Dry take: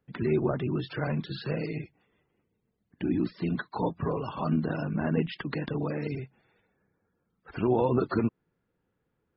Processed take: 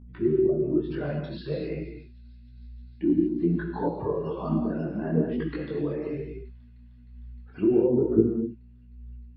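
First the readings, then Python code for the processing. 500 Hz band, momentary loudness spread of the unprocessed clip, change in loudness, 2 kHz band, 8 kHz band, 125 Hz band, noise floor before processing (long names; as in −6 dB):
+5.0 dB, 9 LU, +3.5 dB, −5.0 dB, can't be measured, −0.5 dB, −79 dBFS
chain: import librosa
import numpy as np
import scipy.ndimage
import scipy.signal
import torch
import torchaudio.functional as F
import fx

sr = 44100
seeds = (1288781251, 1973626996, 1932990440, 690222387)

p1 = fx.bin_expand(x, sr, power=1.5)
p2 = fx.peak_eq(p1, sr, hz=370.0, db=14.5, octaves=1.3)
p3 = fx.env_lowpass_down(p2, sr, base_hz=370.0, full_db=-16.0)
p4 = fx.dmg_buzz(p3, sr, base_hz=60.0, harmonics=4, level_db=-43.0, tilt_db=-4, odd_only=False)
p5 = p4 + fx.echo_wet_highpass(p4, sr, ms=308, feedback_pct=85, hz=3100.0, wet_db=-23.0, dry=0)
p6 = fx.rev_gated(p5, sr, seeds[0], gate_ms=260, shape='flat', drr_db=2.0)
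y = fx.detune_double(p6, sr, cents=38)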